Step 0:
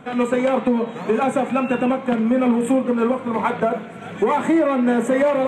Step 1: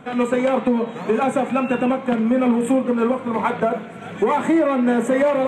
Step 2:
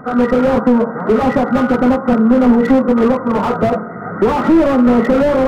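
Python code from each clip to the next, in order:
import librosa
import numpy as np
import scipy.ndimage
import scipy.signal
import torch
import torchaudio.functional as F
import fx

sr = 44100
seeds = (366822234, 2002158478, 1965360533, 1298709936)

y1 = x
y2 = fx.freq_compress(y1, sr, knee_hz=1200.0, ratio=4.0)
y2 = fx.slew_limit(y2, sr, full_power_hz=64.0)
y2 = y2 * librosa.db_to_amplitude(8.0)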